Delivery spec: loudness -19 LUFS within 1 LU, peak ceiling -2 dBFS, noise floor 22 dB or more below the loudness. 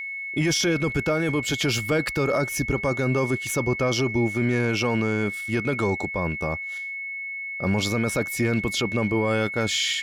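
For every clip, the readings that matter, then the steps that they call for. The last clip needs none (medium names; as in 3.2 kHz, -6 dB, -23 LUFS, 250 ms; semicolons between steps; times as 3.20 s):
dropouts 1; longest dropout 1.3 ms; steady tone 2.2 kHz; tone level -30 dBFS; loudness -24.5 LUFS; peak level -14.5 dBFS; loudness target -19.0 LUFS
-> interpolate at 3.47 s, 1.3 ms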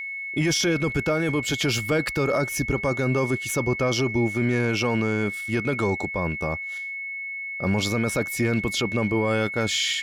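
dropouts 0; steady tone 2.2 kHz; tone level -30 dBFS
-> band-stop 2.2 kHz, Q 30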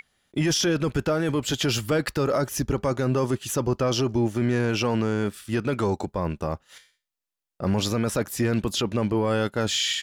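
steady tone not found; loudness -25.0 LUFS; peak level -15.5 dBFS; loudness target -19.0 LUFS
-> trim +6 dB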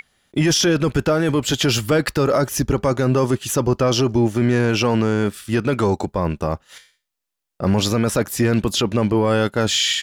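loudness -19.0 LUFS; peak level -9.5 dBFS; noise floor -81 dBFS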